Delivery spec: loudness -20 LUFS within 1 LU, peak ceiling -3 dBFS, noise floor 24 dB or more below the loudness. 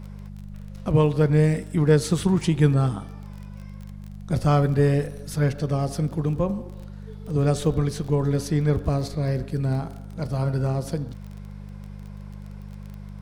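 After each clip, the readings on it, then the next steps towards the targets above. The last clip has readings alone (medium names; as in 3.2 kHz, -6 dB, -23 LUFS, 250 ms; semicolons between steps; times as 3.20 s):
tick rate 24 per s; hum 50 Hz; highest harmonic 200 Hz; hum level -36 dBFS; loudness -23.5 LUFS; peak level -6.0 dBFS; loudness target -20.0 LUFS
-> de-click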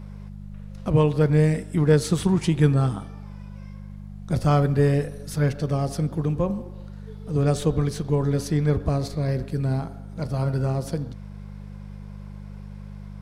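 tick rate 0 per s; hum 50 Hz; highest harmonic 200 Hz; hum level -36 dBFS
-> de-hum 50 Hz, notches 4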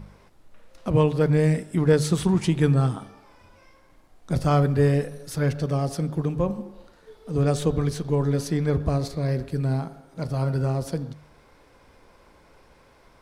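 hum not found; loudness -24.0 LUFS; peak level -7.5 dBFS; loudness target -20.0 LUFS
-> trim +4 dB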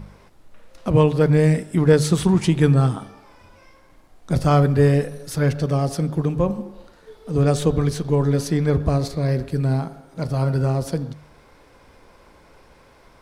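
loudness -20.0 LUFS; peak level -3.5 dBFS; noise floor -52 dBFS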